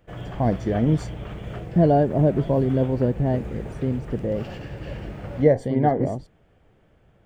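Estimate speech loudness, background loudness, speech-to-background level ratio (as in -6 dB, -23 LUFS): -22.5 LUFS, -35.5 LUFS, 13.0 dB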